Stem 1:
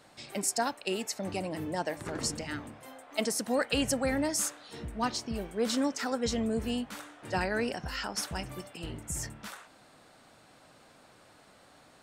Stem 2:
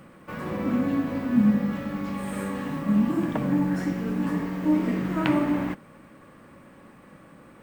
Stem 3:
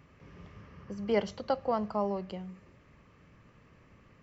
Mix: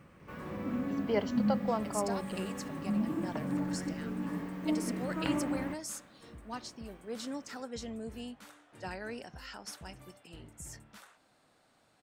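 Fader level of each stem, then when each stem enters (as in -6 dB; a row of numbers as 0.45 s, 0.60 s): -10.5 dB, -10.0 dB, -2.5 dB; 1.50 s, 0.00 s, 0.00 s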